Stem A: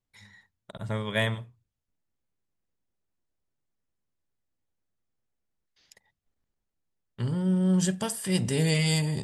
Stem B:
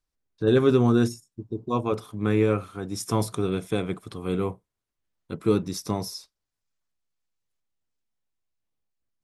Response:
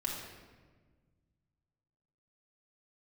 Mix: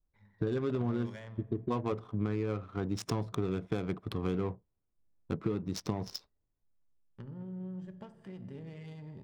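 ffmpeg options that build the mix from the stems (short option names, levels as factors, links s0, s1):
-filter_complex "[0:a]alimiter=limit=0.0944:level=0:latency=1:release=235,acompressor=threshold=0.0112:ratio=3,volume=0.376,asplit=2[s0][s1];[s1]volume=0.398[s2];[1:a]alimiter=limit=0.158:level=0:latency=1:release=355,lowshelf=f=140:g=5,acompressor=threshold=0.0316:ratio=6,volume=1.12[s3];[2:a]atrim=start_sample=2205[s4];[s2][s4]afir=irnorm=-1:irlink=0[s5];[s0][s3][s5]amix=inputs=3:normalize=0,adynamicequalizer=threshold=0.00316:dfrequency=3800:dqfactor=0.85:tfrequency=3800:tqfactor=0.85:attack=5:release=100:ratio=0.375:range=1.5:mode=boostabove:tftype=bell,adynamicsmooth=sensitivity=8:basefreq=930"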